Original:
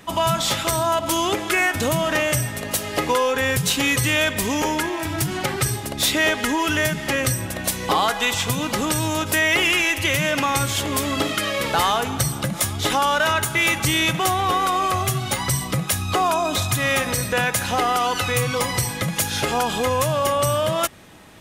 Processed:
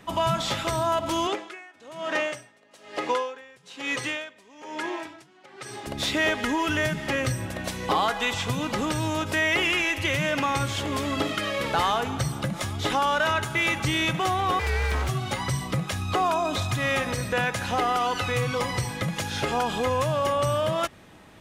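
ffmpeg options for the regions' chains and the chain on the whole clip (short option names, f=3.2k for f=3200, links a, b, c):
-filter_complex "[0:a]asettb=1/sr,asplit=3[a][b][c];[a]atrim=end=1.274[d];[b]atrim=start=1.27:end=5.87,asetpts=PTS-STARTPTS,afade=t=in:d=0.004:c=qsin,afade=t=out:st=4.596:d=0.004:c=qsin,highpass=310,lowpass=7.3k,aeval=exprs='val(0)*pow(10,-24*(0.5-0.5*cos(2*PI*1.1*n/s))/20)':c=same[e];[c]atrim=start=5.866[f];[d][e]acrossfade=d=0.004:c1=hsin:c2=qsin[g];[g][f]acrossfade=d=0.004:c1=qsin:c2=hsin,asettb=1/sr,asplit=3[h][i][j];[h]atrim=end=14.594[k];[i]atrim=start=14.59:end=15.09,asetpts=PTS-STARTPTS,afade=t=in:d=0.004:c=qsin,afade=t=out:st=0.496:d=0.004:c=qsin,aeval=exprs='abs(val(0))':c=same,afreqshift=69[l];[j]atrim=start=15.086[m];[k][l]acrossfade=d=0.004:c1=hsin:c2=qsin[n];[n][m]acrossfade=d=0.004:c1=qsin:c2=hsin,aemphasis=mode=reproduction:type=50kf,acrossover=split=7200[o][p];[p]acompressor=threshold=-44dB:ratio=4:attack=1:release=60[q];[o][q]amix=inputs=2:normalize=0,highshelf=f=8.5k:g=7,volume=-3.5dB"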